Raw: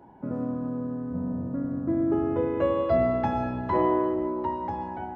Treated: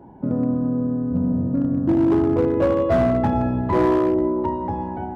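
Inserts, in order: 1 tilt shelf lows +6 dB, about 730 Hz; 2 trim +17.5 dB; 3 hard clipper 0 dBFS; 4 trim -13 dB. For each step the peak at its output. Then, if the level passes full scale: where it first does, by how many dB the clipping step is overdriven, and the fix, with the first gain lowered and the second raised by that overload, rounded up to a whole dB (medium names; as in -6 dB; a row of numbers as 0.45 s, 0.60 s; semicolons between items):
-10.5 dBFS, +7.0 dBFS, 0.0 dBFS, -13.0 dBFS; step 2, 7.0 dB; step 2 +10.5 dB, step 4 -6 dB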